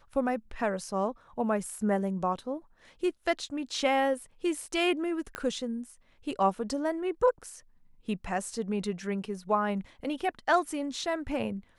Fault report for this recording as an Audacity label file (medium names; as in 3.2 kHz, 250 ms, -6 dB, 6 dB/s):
5.350000	5.350000	pop -19 dBFS